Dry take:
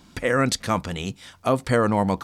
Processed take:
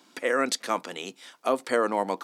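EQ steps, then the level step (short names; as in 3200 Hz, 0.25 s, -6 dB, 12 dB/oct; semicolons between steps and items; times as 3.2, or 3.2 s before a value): HPF 280 Hz 24 dB/oct; -3.0 dB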